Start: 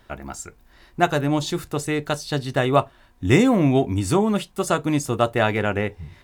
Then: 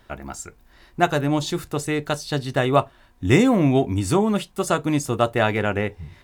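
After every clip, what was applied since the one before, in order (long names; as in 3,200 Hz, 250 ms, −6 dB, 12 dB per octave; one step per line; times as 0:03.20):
no processing that can be heard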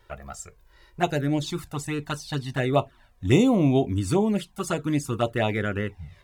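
flanger swept by the level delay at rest 2.2 ms, full sweep at −14 dBFS
level −2 dB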